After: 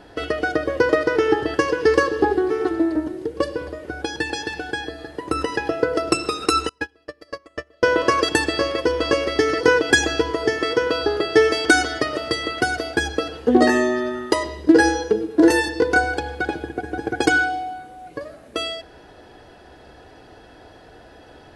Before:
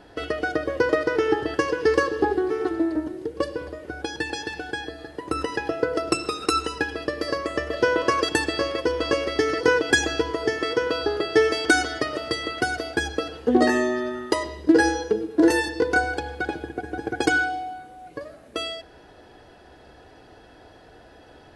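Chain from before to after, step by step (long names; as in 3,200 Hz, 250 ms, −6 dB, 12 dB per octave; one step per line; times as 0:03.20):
0:06.69–0:07.86: noise gate −22 dBFS, range −30 dB
level +3.5 dB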